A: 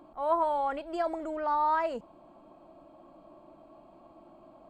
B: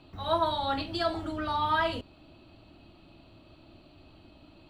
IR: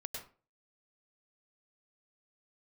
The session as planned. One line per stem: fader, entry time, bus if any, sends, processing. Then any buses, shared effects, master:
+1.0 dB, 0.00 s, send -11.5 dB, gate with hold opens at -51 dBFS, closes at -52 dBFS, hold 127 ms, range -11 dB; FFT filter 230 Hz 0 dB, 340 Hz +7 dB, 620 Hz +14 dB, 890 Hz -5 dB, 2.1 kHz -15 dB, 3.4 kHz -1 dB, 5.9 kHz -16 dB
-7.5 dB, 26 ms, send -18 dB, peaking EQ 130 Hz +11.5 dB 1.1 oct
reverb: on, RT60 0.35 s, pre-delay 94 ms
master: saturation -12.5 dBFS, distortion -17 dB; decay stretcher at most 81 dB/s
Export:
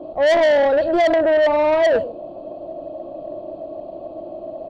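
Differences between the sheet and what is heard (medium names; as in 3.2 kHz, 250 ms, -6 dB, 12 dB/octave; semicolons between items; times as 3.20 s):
stem A +1.0 dB -> +11.5 dB; master: missing decay stretcher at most 81 dB/s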